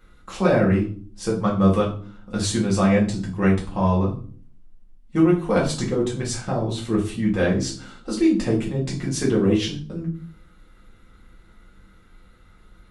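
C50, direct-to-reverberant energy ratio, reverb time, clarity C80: 8.0 dB, -4.5 dB, 0.45 s, 14.0 dB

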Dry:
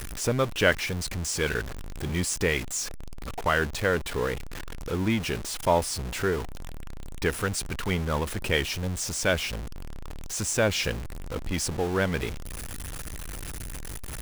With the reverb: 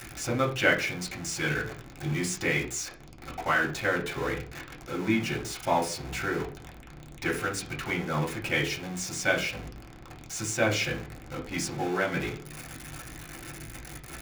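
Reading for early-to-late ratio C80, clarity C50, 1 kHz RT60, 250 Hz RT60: 16.5 dB, 11.0 dB, 0.35 s, 0.50 s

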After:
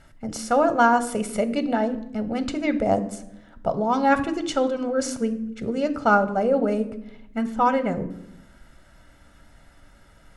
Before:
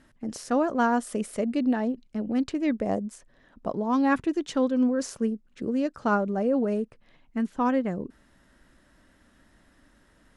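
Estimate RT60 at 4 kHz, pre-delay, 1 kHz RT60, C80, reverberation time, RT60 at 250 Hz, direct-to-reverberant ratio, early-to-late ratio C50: 0.55 s, 3 ms, 0.70 s, 17.0 dB, 0.80 s, 1.1 s, 9.5 dB, 14.0 dB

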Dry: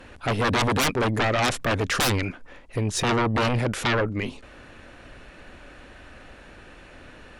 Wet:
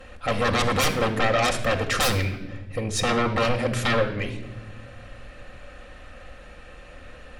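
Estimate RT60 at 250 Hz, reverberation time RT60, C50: 2.1 s, 0.95 s, 10.0 dB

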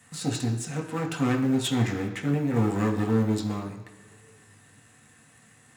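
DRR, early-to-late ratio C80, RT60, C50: -0.5 dB, 10.0 dB, not exponential, 8.5 dB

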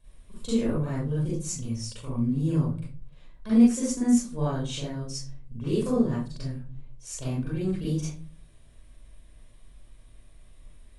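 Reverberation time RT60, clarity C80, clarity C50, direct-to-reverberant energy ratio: 0.40 s, 6.5 dB, -1.5 dB, -9.5 dB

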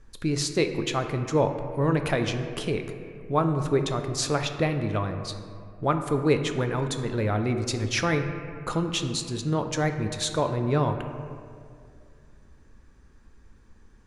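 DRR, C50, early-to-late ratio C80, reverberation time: 6.0 dB, 7.5 dB, 8.5 dB, 2.3 s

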